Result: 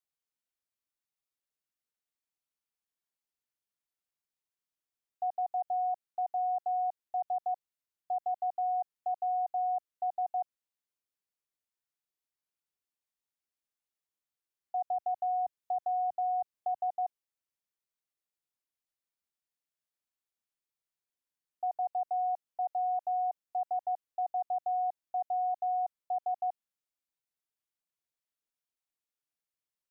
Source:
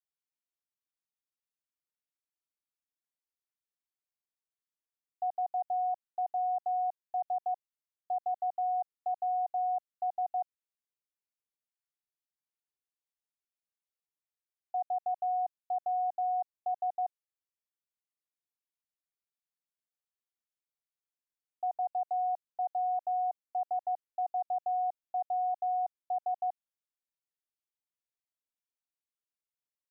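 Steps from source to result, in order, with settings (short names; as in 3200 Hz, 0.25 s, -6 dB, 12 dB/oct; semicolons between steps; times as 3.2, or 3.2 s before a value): 14.87–16.89 three-band squash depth 40%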